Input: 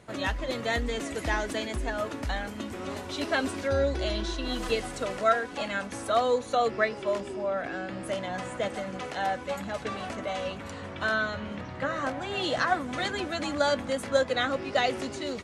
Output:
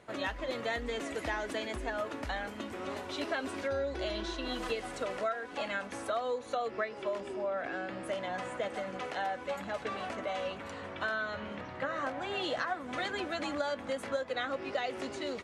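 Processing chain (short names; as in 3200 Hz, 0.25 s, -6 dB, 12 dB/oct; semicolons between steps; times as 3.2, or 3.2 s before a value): tone controls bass -8 dB, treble -6 dB; compressor 6:1, threshold -29 dBFS, peak gain reduction 11.5 dB; gain -1.5 dB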